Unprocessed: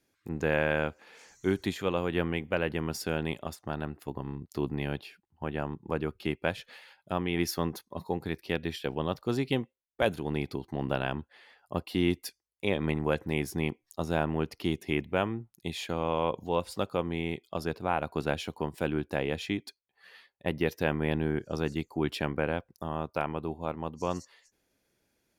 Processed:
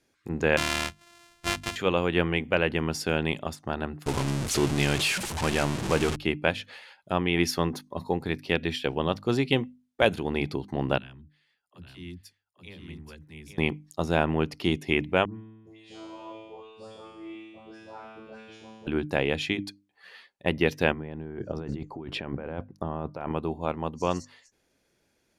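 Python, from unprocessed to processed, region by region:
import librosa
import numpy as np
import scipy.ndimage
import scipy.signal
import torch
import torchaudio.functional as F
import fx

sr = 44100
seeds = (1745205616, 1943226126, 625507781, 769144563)

y = fx.chain(x, sr, fx.sample_sort(block=128),
    fx.peak_eq(hz=330.0, db=-12.0, octaves=2.9), at=(0.57, 1.76))
y = fx.chain(y, sr, fx.zero_step(step_db=-30.5),
    fx.peak_eq(hz=8400.0, db=7.5, octaves=1.8), at=(4.06, 6.16))
y = fx.chain(y, sr, fx.tone_stack(knobs='6-0-2'),
    fx.dispersion(late='lows', ms=49.0, hz=300.0),
    fx.echo_single(ms=831, db=-5.0), at=(10.98, 13.58))
y = fx.chain(y, sr, fx.lowpass(hz=8800.0, slope=24),
    fx.comb_fb(f0_hz=110.0, decay_s=1.3, harmonics='all', damping=0.0, mix_pct=100),
    fx.dispersion(late='highs', ms=132.0, hz=1900.0), at=(15.25, 18.87))
y = fx.chain(y, sr, fx.lowpass(hz=1100.0, slope=6),
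    fx.over_compress(threshold_db=-38.0, ratio=-1.0), at=(20.92, 23.32))
y = fx.dynamic_eq(y, sr, hz=2700.0, q=1.5, threshold_db=-45.0, ratio=4.0, max_db=4)
y = scipy.signal.sosfilt(scipy.signal.butter(2, 10000.0, 'lowpass', fs=sr, output='sos'), y)
y = fx.hum_notches(y, sr, base_hz=50, count=6)
y = y * 10.0 ** (4.5 / 20.0)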